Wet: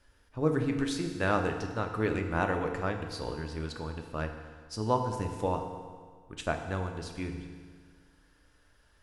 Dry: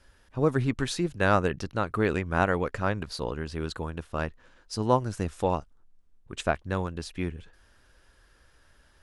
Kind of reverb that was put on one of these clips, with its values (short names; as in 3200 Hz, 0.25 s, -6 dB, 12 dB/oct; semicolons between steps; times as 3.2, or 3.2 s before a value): FDN reverb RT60 1.7 s, low-frequency decay 1×, high-frequency decay 0.9×, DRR 4 dB; gain -5.5 dB